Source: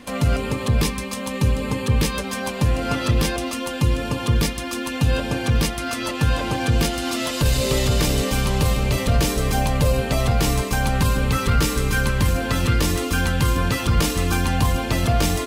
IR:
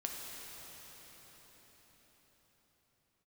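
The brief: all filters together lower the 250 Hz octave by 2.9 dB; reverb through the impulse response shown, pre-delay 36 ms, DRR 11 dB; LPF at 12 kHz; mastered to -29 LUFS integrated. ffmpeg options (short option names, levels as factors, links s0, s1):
-filter_complex "[0:a]lowpass=12000,equalizer=f=250:t=o:g=-4,asplit=2[s0][s1];[1:a]atrim=start_sample=2205,adelay=36[s2];[s1][s2]afir=irnorm=-1:irlink=0,volume=0.237[s3];[s0][s3]amix=inputs=2:normalize=0,volume=0.447"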